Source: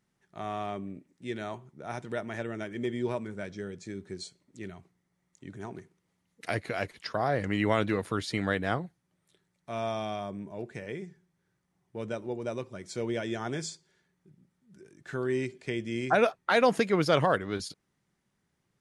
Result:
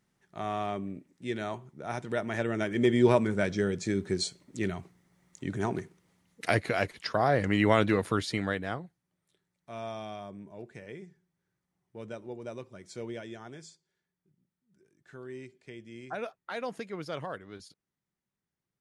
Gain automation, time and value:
2.06 s +2 dB
3.1 s +10 dB
5.71 s +10 dB
6.92 s +3 dB
8.13 s +3 dB
8.77 s -6 dB
13.03 s -6 dB
13.59 s -13 dB

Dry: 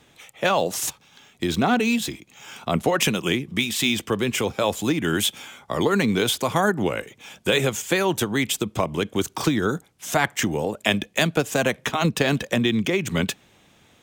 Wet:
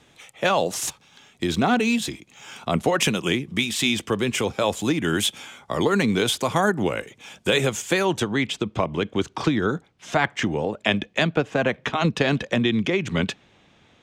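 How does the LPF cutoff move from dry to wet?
7.97 s 11000 Hz
8.39 s 4100 Hz
11.19 s 4100 Hz
11.52 s 2400 Hz
12.03 s 4800 Hz

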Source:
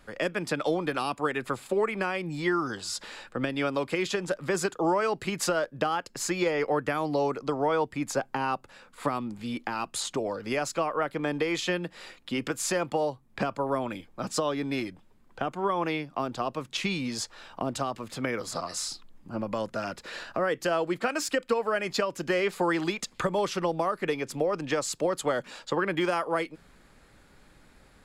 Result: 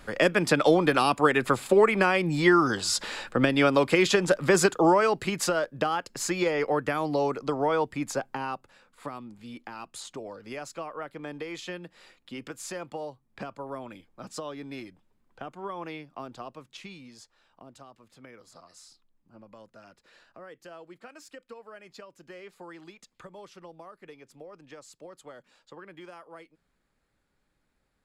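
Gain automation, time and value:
4.65 s +7 dB
5.47 s +0.5 dB
7.93 s +0.5 dB
9.03 s -9 dB
16.34 s -9 dB
17.32 s -19 dB

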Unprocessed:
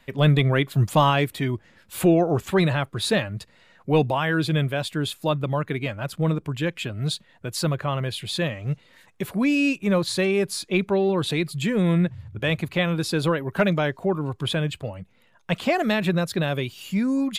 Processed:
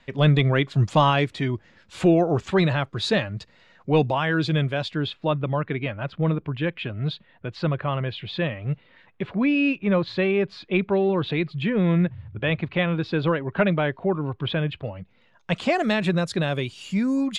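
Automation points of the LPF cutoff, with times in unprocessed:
LPF 24 dB/oct
4.76 s 6500 Hz
5.2 s 3400 Hz
14.73 s 3400 Hz
15.71 s 8700 Hz

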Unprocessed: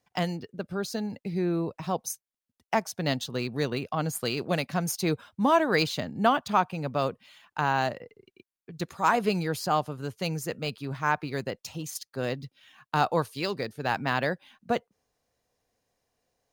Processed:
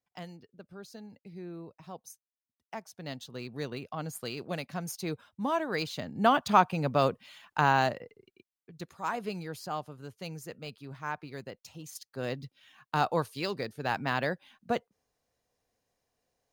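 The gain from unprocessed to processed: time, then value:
2.75 s -15 dB
3.6 s -8 dB
5.85 s -8 dB
6.46 s +2 dB
7.67 s +2 dB
8.93 s -10 dB
11.74 s -10 dB
12.36 s -3 dB

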